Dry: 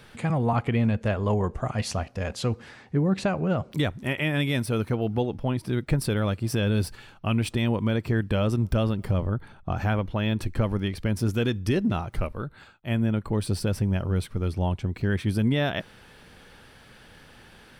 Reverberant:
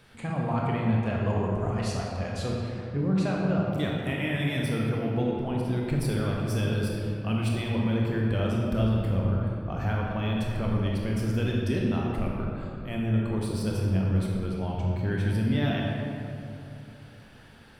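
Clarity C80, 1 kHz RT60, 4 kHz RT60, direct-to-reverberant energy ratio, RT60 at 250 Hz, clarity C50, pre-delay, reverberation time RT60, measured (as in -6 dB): 1.0 dB, 2.5 s, 1.4 s, -2.5 dB, 3.2 s, -0.5 dB, 20 ms, 2.8 s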